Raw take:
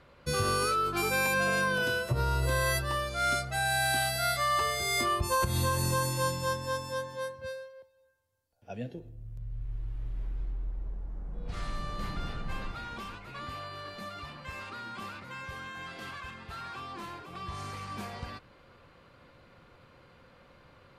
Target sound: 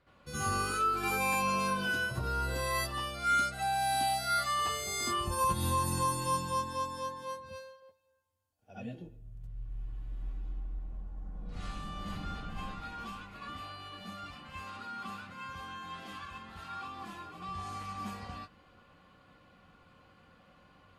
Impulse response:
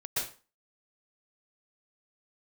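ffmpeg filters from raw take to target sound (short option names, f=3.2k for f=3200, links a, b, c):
-filter_complex "[1:a]atrim=start_sample=2205,afade=t=out:st=0.22:d=0.01,atrim=end_sample=10143,asetrate=79380,aresample=44100[a];[0:a][a]afir=irnorm=-1:irlink=0,volume=-2.5dB"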